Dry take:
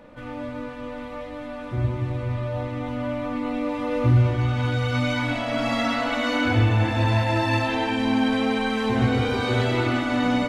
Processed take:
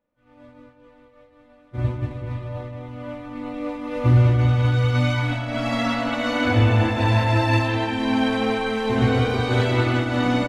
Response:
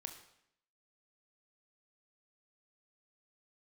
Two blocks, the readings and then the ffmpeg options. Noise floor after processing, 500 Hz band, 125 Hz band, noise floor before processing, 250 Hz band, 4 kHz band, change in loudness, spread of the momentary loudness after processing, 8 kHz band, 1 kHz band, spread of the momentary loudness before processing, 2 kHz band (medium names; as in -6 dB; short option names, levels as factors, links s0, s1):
-54 dBFS, +1.0 dB, +3.0 dB, -35 dBFS, 0.0 dB, +0.5 dB, +2.5 dB, 15 LU, no reading, +0.5 dB, 14 LU, +0.5 dB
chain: -filter_complex "[0:a]agate=range=0.0224:threshold=0.1:ratio=3:detection=peak,asplit=2[s0][s1];[s1]adelay=197,lowpass=f=2000:p=1,volume=0.422,asplit=2[s2][s3];[s3]adelay=197,lowpass=f=2000:p=1,volume=0.53,asplit=2[s4][s5];[s5]adelay=197,lowpass=f=2000:p=1,volume=0.53,asplit=2[s6][s7];[s7]adelay=197,lowpass=f=2000:p=1,volume=0.53,asplit=2[s8][s9];[s9]adelay=197,lowpass=f=2000:p=1,volume=0.53,asplit=2[s10][s11];[s11]adelay=197,lowpass=f=2000:p=1,volume=0.53[s12];[s0][s2][s4][s6][s8][s10][s12]amix=inputs=7:normalize=0,volume=1.26"